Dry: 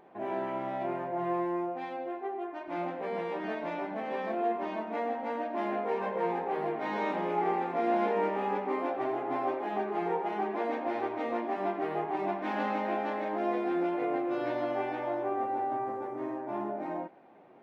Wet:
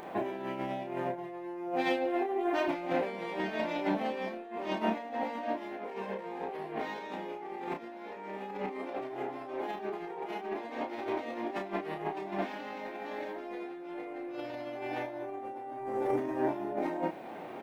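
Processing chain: peak limiter -23 dBFS, peak gain reduction 5.5 dB; compressor with a negative ratio -39 dBFS, ratio -0.5; treble shelf 2.7 kHz +10 dB; doubling 31 ms -5 dB; dynamic bell 1.2 kHz, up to -4 dB, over -47 dBFS, Q 0.82; trim +4.5 dB

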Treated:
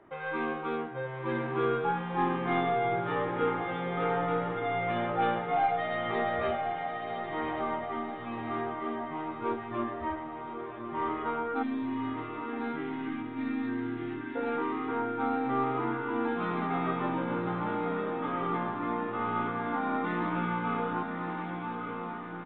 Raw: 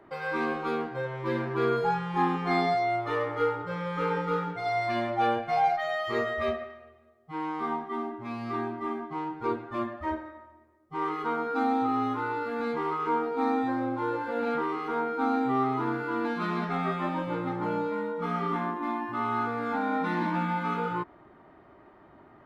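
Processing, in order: tracing distortion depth 0.038 ms; spectral selection erased 11.63–14.36 s, 390–1500 Hz; echo that smears into a reverb 1147 ms, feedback 51%, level -5 dB; resampled via 8 kHz; trim -3 dB

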